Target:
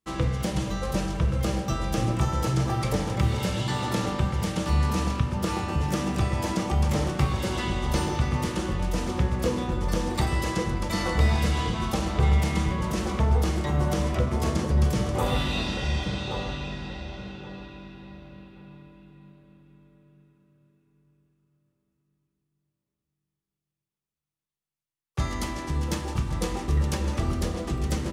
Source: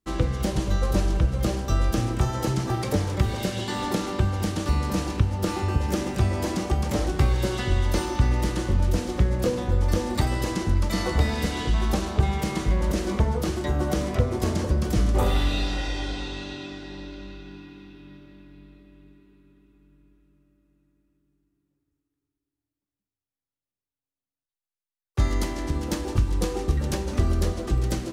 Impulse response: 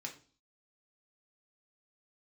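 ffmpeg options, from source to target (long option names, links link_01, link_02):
-filter_complex "[0:a]equalizer=frequency=320:width_type=o:width=0.77:gain=-4,asplit=2[link_01][link_02];[link_02]adelay=1126,lowpass=frequency=1200:poles=1,volume=-5.5dB,asplit=2[link_03][link_04];[link_04]adelay=1126,lowpass=frequency=1200:poles=1,volume=0.24,asplit=2[link_05][link_06];[link_06]adelay=1126,lowpass=frequency=1200:poles=1,volume=0.24[link_07];[link_01][link_03][link_05][link_07]amix=inputs=4:normalize=0,asplit=2[link_08][link_09];[1:a]atrim=start_sample=2205,asetrate=22491,aresample=44100[link_10];[link_09][link_10]afir=irnorm=-1:irlink=0,volume=-3.5dB[link_11];[link_08][link_11]amix=inputs=2:normalize=0,volume=-4.5dB"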